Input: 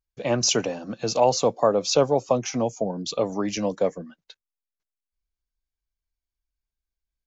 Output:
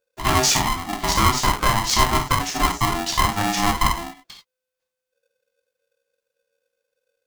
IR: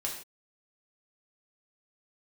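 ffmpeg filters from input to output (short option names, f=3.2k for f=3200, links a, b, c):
-filter_complex "[0:a]alimiter=limit=-14dB:level=0:latency=1:release=472,asplit=3[a][b][c];[a]afade=t=out:st=1.1:d=0.02[d];[b]afreqshift=-17,afade=t=in:st=1.1:d=0.02,afade=t=out:st=2.85:d=0.02[e];[c]afade=t=in:st=2.85:d=0.02[f];[d][e][f]amix=inputs=3:normalize=0[g];[1:a]atrim=start_sample=2205,afade=t=out:st=0.15:d=0.01,atrim=end_sample=7056[h];[g][h]afir=irnorm=-1:irlink=0,aeval=exprs='val(0)*sgn(sin(2*PI*510*n/s))':c=same,volume=4.5dB"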